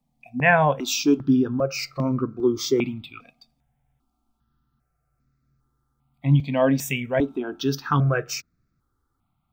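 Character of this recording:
notches that jump at a steady rate 2.5 Hz 370–3,100 Hz

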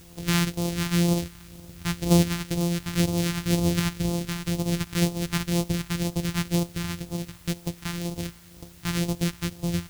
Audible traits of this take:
a buzz of ramps at a fixed pitch in blocks of 256 samples
phaser sweep stages 2, 2 Hz, lowest notch 510–1,600 Hz
a quantiser's noise floor 10 bits, dither triangular

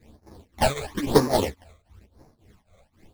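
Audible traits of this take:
aliases and images of a low sample rate 1,400 Hz, jitter 20%
phaser sweep stages 12, 1 Hz, lowest notch 280–3,100 Hz
tremolo triangle 3.7 Hz, depth 95%
a shimmering, thickened sound

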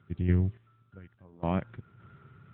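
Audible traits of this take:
sample-and-hold tremolo, depth 90%
AMR narrowband

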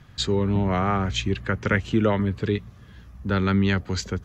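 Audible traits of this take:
background noise floor −48 dBFS
spectral slope −5.5 dB per octave

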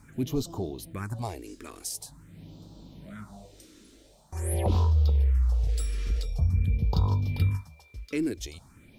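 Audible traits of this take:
a quantiser's noise floor 12 bits, dither none
phaser sweep stages 4, 0.46 Hz, lowest notch 130–2,000 Hz

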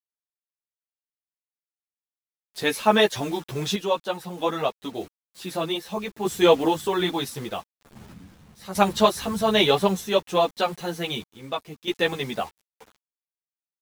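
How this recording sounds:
a quantiser's noise floor 8 bits, dither none
sample-and-hold tremolo 1.6 Hz, depth 75%
a shimmering, thickened sound

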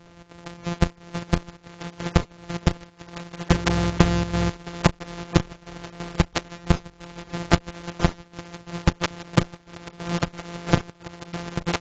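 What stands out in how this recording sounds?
a buzz of ramps at a fixed pitch in blocks of 256 samples
chopped level 3 Hz, depth 65%, duty 70%
AAC

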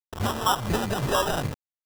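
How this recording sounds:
a quantiser's noise floor 6 bits, dither none
phaser sweep stages 2, 1.5 Hz, lowest notch 180–1,100 Hz
aliases and images of a low sample rate 2,200 Hz, jitter 0%

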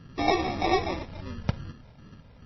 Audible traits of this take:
phaser sweep stages 2, 2.5 Hz, lowest notch 280–1,100 Hz
aliases and images of a low sample rate 1,500 Hz, jitter 0%
MP3

